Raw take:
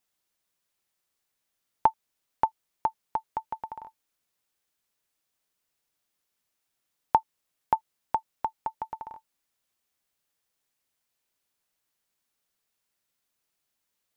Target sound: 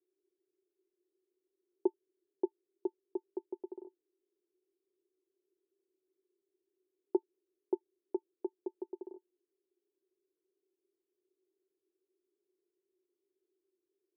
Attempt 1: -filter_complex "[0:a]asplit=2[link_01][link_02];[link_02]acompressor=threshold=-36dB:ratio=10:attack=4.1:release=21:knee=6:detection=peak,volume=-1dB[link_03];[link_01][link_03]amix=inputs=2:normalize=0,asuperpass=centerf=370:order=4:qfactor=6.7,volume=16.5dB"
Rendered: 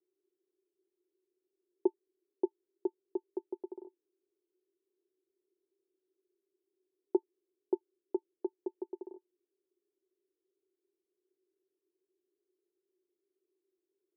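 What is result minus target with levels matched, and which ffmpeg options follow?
downward compressor: peak gain reduction −9 dB
-filter_complex "[0:a]asplit=2[link_01][link_02];[link_02]acompressor=threshold=-46dB:ratio=10:attack=4.1:release=21:knee=6:detection=peak,volume=-1dB[link_03];[link_01][link_03]amix=inputs=2:normalize=0,asuperpass=centerf=370:order=4:qfactor=6.7,volume=16.5dB"

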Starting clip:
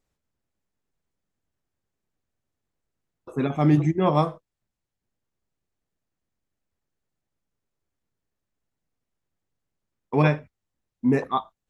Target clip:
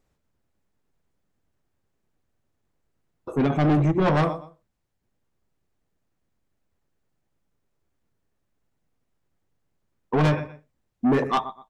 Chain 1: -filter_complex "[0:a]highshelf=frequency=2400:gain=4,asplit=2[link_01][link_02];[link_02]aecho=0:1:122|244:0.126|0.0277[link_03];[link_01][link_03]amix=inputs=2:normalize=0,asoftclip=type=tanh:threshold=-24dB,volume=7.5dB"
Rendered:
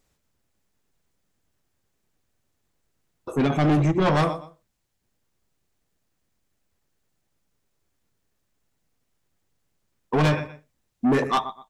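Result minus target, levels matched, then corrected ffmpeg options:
4,000 Hz band +3.5 dB
-filter_complex "[0:a]highshelf=frequency=2400:gain=-6,asplit=2[link_01][link_02];[link_02]aecho=0:1:122|244:0.126|0.0277[link_03];[link_01][link_03]amix=inputs=2:normalize=0,asoftclip=type=tanh:threshold=-24dB,volume=7.5dB"

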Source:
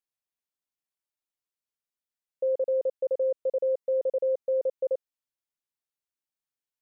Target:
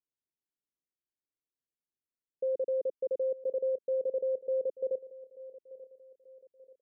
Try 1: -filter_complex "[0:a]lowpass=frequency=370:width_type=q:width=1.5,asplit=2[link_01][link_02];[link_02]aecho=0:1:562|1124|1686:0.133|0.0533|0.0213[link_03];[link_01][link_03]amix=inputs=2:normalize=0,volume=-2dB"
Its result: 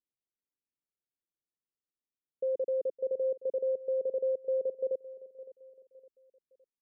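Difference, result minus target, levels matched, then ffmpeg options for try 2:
echo 324 ms early
-filter_complex "[0:a]lowpass=frequency=370:width_type=q:width=1.5,asplit=2[link_01][link_02];[link_02]aecho=0:1:886|1772|2658:0.133|0.0533|0.0213[link_03];[link_01][link_03]amix=inputs=2:normalize=0,volume=-2dB"

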